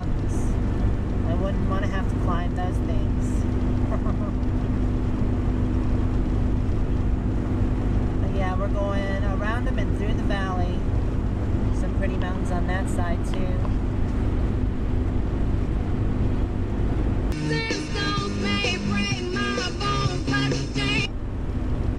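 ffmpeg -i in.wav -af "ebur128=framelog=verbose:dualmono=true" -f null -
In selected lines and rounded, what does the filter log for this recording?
Integrated loudness:
  I:         -22.3 LUFS
  Threshold: -32.3 LUFS
Loudness range:
  LRA:         1.4 LU
  Threshold: -42.3 LUFS
  LRA low:   -22.9 LUFS
  LRA high:  -21.5 LUFS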